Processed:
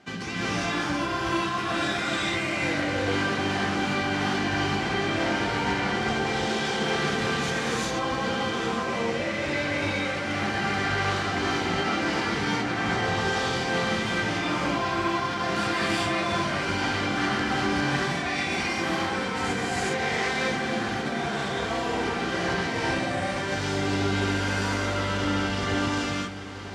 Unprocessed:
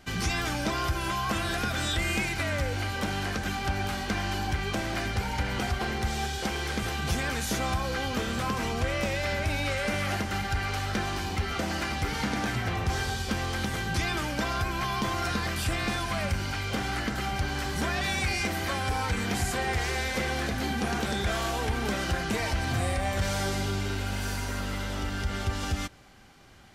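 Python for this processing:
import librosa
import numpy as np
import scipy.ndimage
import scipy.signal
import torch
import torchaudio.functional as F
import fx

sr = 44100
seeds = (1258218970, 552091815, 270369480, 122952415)

y = scipy.signal.sosfilt(scipy.signal.cheby1(2, 1.0, [190.0, 7500.0], 'bandpass', fs=sr, output='sos'), x)
y = fx.high_shelf(y, sr, hz=4800.0, db=-11.0)
y = fx.over_compress(y, sr, threshold_db=-34.0, ratio=-0.5)
y = fx.echo_diffused(y, sr, ms=905, feedback_pct=73, wet_db=-14.5)
y = fx.rev_gated(y, sr, seeds[0], gate_ms=430, shape='rising', drr_db=-7.5)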